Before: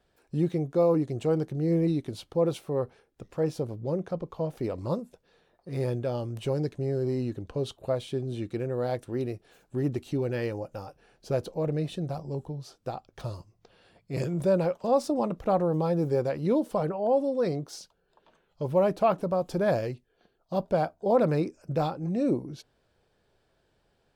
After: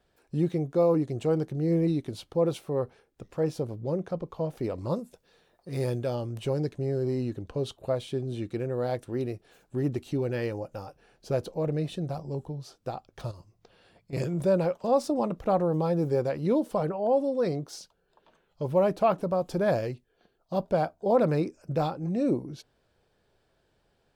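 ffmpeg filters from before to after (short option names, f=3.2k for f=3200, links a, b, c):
-filter_complex "[0:a]asettb=1/sr,asplit=3[a][b][c];[a]atrim=end=4.964[d];[b]atrim=start=4.96:end=6.15,asetpts=PTS-STARTPTS,afade=t=in:d=0.004:c=qsin,afade=t=out:st=1.186:d=0.004:c=qsin,highshelf=f=4k:g=7.5[e];[c]atrim=start=6.146[f];[d][e]acrossfade=d=0.004:c1=hsin:c2=qsin[g];[g][f]acrossfade=d=0.004:c1=qsin:c2=hsin,asettb=1/sr,asplit=3[h][i][j];[h]atrim=end=13.314[k];[i]atrim=start=13.31:end=14.13,asetpts=PTS-STARTPTS,afade=t=in:d=0.004:c=qsin,afade=t=out:st=0.816:d=0.004:c=qsin,acompressor=threshold=-43dB:ratio=6:attack=3.2:release=140:knee=1:detection=peak[l];[j]atrim=start=14.126[m];[k][l]acrossfade=d=0.004:c1=hsin:c2=qsin[n];[n][m]acrossfade=d=0.004:c1=qsin:c2=hsin"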